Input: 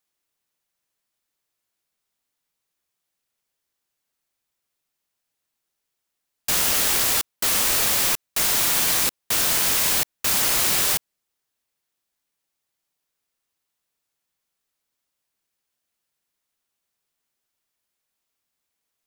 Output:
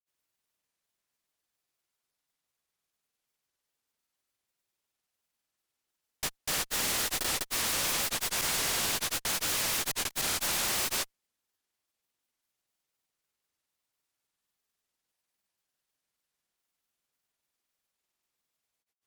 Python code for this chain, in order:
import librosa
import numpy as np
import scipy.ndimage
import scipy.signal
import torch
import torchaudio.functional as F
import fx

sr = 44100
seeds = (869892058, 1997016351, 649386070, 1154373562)

y = fx.granulator(x, sr, seeds[0], grain_ms=100.0, per_s=20.0, spray_ms=293.0, spread_st=0)
y = fx.tube_stage(y, sr, drive_db=25.0, bias=0.45)
y = fx.doppler_dist(y, sr, depth_ms=0.27)